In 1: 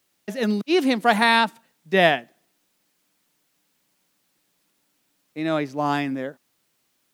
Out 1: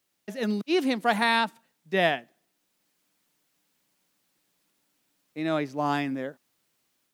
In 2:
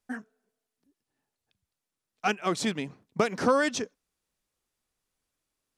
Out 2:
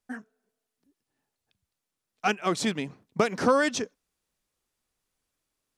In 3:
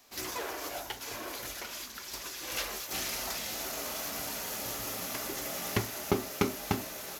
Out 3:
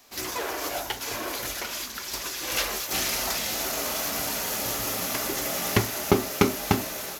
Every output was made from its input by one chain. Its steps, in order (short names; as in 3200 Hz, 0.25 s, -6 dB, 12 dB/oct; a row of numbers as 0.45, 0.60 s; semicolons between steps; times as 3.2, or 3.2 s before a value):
AGC gain up to 3 dB; match loudness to -27 LUFS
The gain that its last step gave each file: -6.5, -1.5, +5.0 dB